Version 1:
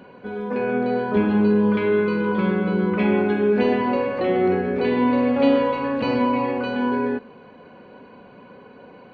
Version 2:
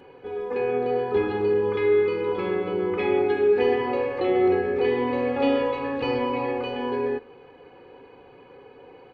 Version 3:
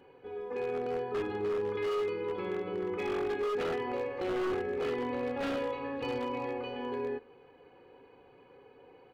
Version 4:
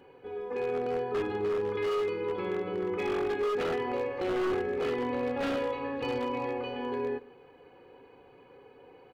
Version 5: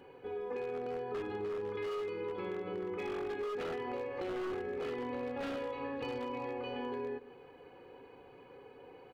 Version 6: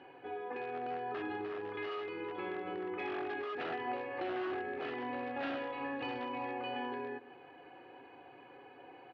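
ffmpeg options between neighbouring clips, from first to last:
ffmpeg -i in.wav -af "aecho=1:1:2.4:0.85,volume=-4.5dB" out.wav
ffmpeg -i in.wav -af "aeval=exprs='0.126*(abs(mod(val(0)/0.126+3,4)-2)-1)':channel_layout=same,volume=-9dB" out.wav
ffmpeg -i in.wav -filter_complex "[0:a]asplit=2[link_01][link_02];[link_02]adelay=145.8,volume=-22dB,highshelf=frequency=4000:gain=-3.28[link_03];[link_01][link_03]amix=inputs=2:normalize=0,volume=2.5dB" out.wav
ffmpeg -i in.wav -af "acompressor=threshold=-36dB:ratio=6" out.wav
ffmpeg -i in.wav -af "highpass=130,equalizer=frequency=200:width_type=q:width=4:gain=-8,equalizer=frequency=320:width_type=q:width=4:gain=5,equalizer=frequency=460:width_type=q:width=4:gain=-9,equalizer=frequency=720:width_type=q:width=4:gain=8,equalizer=frequency=1700:width_type=q:width=4:gain=6,equalizer=frequency=2700:width_type=q:width=4:gain=4,lowpass=frequency=4300:width=0.5412,lowpass=frequency=4300:width=1.3066" out.wav

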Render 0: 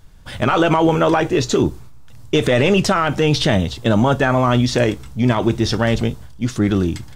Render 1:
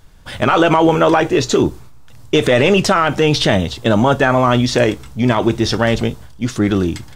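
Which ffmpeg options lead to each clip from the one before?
ffmpeg -i in.wav -af "bass=frequency=250:gain=-4,treble=frequency=4000:gain=-1,volume=3.5dB" out.wav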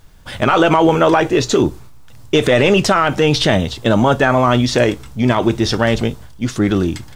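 ffmpeg -i in.wav -af "acrusher=bits=9:mix=0:aa=0.000001" out.wav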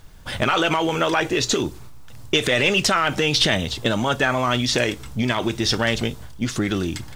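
ffmpeg -i in.wav -filter_complex "[0:a]acrossover=split=1700[link_01][link_02];[link_01]acompressor=threshold=-20dB:ratio=6[link_03];[link_02]aphaser=in_gain=1:out_gain=1:delay=3:decay=0.3:speed=1.7:type=sinusoidal[link_04];[link_03][link_04]amix=inputs=2:normalize=0" out.wav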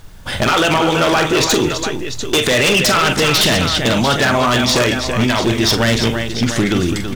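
ffmpeg -i in.wav -af "aecho=1:1:44|206|331|695:0.355|0.112|0.376|0.282,aeval=exprs='0.2*(abs(mod(val(0)/0.2+3,4)-2)-1)':channel_layout=same,volume=6.5dB" out.wav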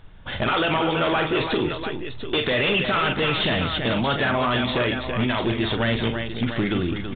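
ffmpeg -i in.wav -af "aresample=8000,aresample=44100,volume=-7.5dB" out.wav

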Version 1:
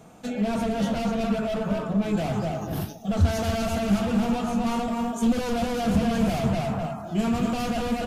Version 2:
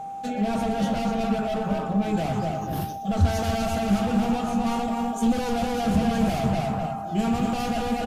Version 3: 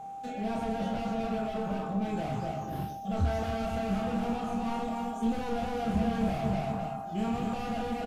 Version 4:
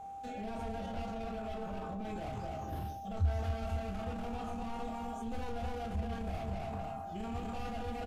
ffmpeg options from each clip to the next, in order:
ffmpeg -i in.wav -af "aecho=1:1:123:0.15,aeval=exprs='val(0)+0.0251*sin(2*PI*790*n/s)':channel_layout=same" out.wav
ffmpeg -i in.wav -filter_complex "[0:a]acrossover=split=3200[link_01][link_02];[link_02]acompressor=threshold=-47dB:ratio=4:attack=1:release=60[link_03];[link_01][link_03]amix=inputs=2:normalize=0,asplit=2[link_04][link_05];[link_05]aecho=0:1:27|42:0.562|0.316[link_06];[link_04][link_06]amix=inputs=2:normalize=0,volume=-8dB" out.wav
ffmpeg -i in.wav -af "alimiter=level_in=4.5dB:limit=-24dB:level=0:latency=1:release=11,volume=-4.5dB,lowshelf=frequency=110:width_type=q:width=3:gain=6.5,volume=-4dB" out.wav

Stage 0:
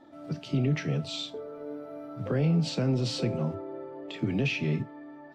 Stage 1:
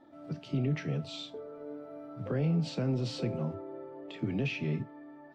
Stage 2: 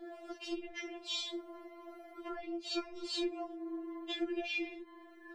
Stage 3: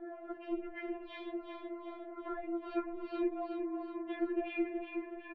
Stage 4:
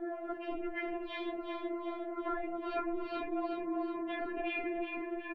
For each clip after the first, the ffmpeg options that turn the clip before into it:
ffmpeg -i in.wav -af "highshelf=frequency=4000:gain=-6.5,volume=-4dB" out.wav
ffmpeg -i in.wav -af "acompressor=threshold=-39dB:ratio=12,afftfilt=real='re*4*eq(mod(b,16),0)':imag='im*4*eq(mod(b,16),0)':win_size=2048:overlap=0.75,volume=12dB" out.wav
ffmpeg -i in.wav -filter_complex "[0:a]lowpass=frequency=1900:width=0.5412,lowpass=frequency=1900:width=1.3066,asplit=2[link_01][link_02];[link_02]aecho=0:1:369|738|1107|1476|1845|2214:0.501|0.246|0.12|0.059|0.0289|0.0142[link_03];[link_01][link_03]amix=inputs=2:normalize=0,volume=2.5dB" out.wav
ffmpeg -i in.wav -af "afftfilt=real='re*lt(hypot(re,im),0.141)':imag='im*lt(hypot(re,im),0.141)':win_size=1024:overlap=0.75,volume=6.5dB" out.wav

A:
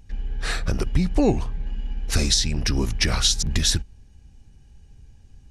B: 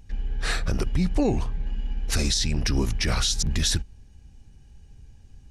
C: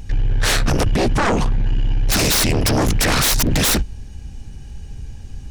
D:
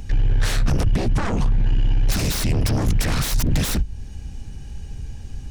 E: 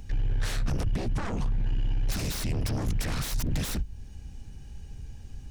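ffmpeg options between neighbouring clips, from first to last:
ffmpeg -i in.wav -af "alimiter=limit=-13.5dB:level=0:latency=1:release=37" out.wav
ffmpeg -i in.wav -af "aeval=exprs='0.224*sin(PI/2*3.98*val(0)/0.224)':channel_layout=same" out.wav
ffmpeg -i in.wav -filter_complex "[0:a]acrossover=split=200[link_01][link_02];[link_02]acompressor=threshold=-33dB:ratio=2[link_03];[link_01][link_03]amix=inputs=2:normalize=0" out.wav
ffmpeg -i in.wav -af "acrusher=bits=10:mix=0:aa=0.000001,volume=-9dB" out.wav

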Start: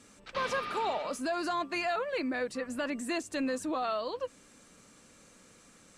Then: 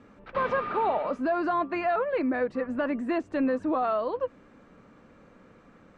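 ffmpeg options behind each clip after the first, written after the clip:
ffmpeg -i in.wav -af "lowpass=1500,volume=6.5dB" out.wav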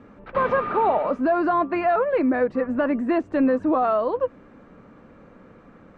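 ffmpeg -i in.wav -af "highshelf=frequency=3100:gain=-11.5,volume=6.5dB" out.wav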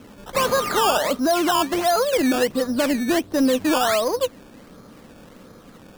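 ffmpeg -i in.wav -filter_complex "[0:a]asplit=2[link_01][link_02];[link_02]asoftclip=type=tanh:threshold=-28.5dB,volume=-6dB[link_03];[link_01][link_03]amix=inputs=2:normalize=0,acrusher=samples=15:mix=1:aa=0.000001:lfo=1:lforange=15:lforate=1.4" out.wav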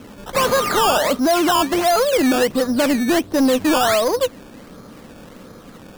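ffmpeg -i in.wav -af "asoftclip=type=tanh:threshold=-15dB,volume=5dB" out.wav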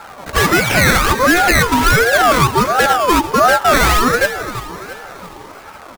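ffmpeg -i in.wav -filter_complex "[0:a]asplit=2[link_01][link_02];[link_02]aecho=0:1:337|674|1011|1348|1685:0.251|0.128|0.0653|0.0333|0.017[link_03];[link_01][link_03]amix=inputs=2:normalize=0,aeval=exprs='val(0)*sin(2*PI*850*n/s+850*0.3/1.4*sin(2*PI*1.4*n/s))':channel_layout=same,volume=7dB" out.wav

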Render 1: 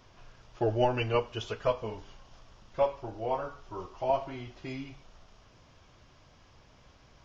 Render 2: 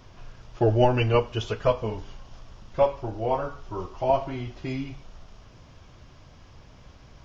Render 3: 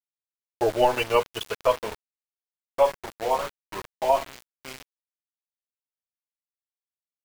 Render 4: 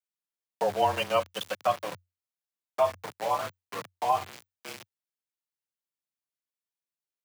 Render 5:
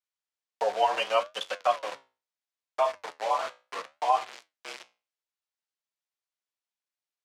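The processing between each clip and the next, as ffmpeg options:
ffmpeg -i in.wav -af "lowshelf=frequency=280:gain=6.5,volume=4.5dB" out.wav
ffmpeg -i in.wav -af "equalizer=frequency=125:width_type=o:width=1:gain=-8,equalizer=frequency=500:width_type=o:width=1:gain=7,equalizer=frequency=1000:width_type=o:width=1:gain=9,equalizer=frequency=2000:width_type=o:width=1:gain=7,equalizer=frequency=4000:width_type=o:width=1:gain=12,aeval=exprs='val(0)*gte(abs(val(0)),0.0794)':channel_layout=same,volume=-8dB" out.wav
ffmpeg -i in.wav -filter_complex "[0:a]asplit=2[link_01][link_02];[link_02]acompressor=threshold=-27dB:ratio=6,volume=-2dB[link_03];[link_01][link_03]amix=inputs=2:normalize=0,afreqshift=90,volume=-6.5dB" out.wav
ffmpeg -i in.wav -af "flanger=delay=10:depth=7:regen=-70:speed=0.7:shape=sinusoidal,highpass=480,lowpass=6900,volume=6dB" out.wav

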